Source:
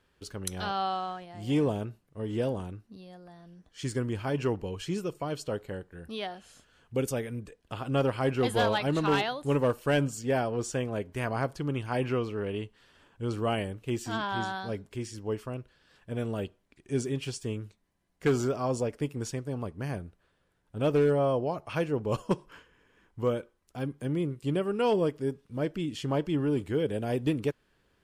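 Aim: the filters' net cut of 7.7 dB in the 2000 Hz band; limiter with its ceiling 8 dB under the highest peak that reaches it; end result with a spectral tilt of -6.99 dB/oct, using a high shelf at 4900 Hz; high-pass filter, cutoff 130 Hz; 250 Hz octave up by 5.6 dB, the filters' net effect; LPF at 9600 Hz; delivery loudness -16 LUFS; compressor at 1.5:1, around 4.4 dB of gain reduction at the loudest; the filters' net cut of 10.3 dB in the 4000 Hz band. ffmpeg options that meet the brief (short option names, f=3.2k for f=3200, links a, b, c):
-af "highpass=130,lowpass=9.6k,equalizer=f=250:t=o:g=7.5,equalizer=f=2k:t=o:g=-8.5,equalizer=f=4k:t=o:g=-9,highshelf=f=4.9k:g=-3.5,acompressor=threshold=-30dB:ratio=1.5,volume=19dB,alimiter=limit=-4.5dB:level=0:latency=1"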